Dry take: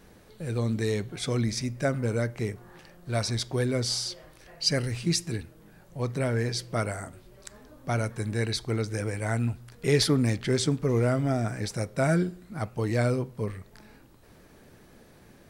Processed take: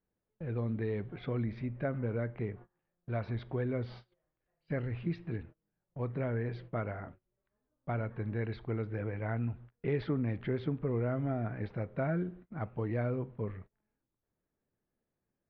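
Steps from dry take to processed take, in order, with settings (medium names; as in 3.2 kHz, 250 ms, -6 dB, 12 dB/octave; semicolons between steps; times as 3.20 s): Bessel low-pass 1.8 kHz, order 8; gate -43 dBFS, range -28 dB; compression 2:1, threshold -27 dBFS, peak gain reduction 5.5 dB; trim -4.5 dB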